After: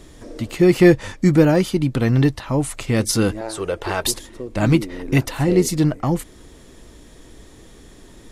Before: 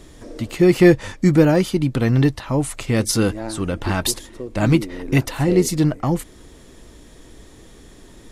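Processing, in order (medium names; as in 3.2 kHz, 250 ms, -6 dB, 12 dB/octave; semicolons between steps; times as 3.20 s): 3.41–4.04 s: resonant low shelf 330 Hz -7.5 dB, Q 3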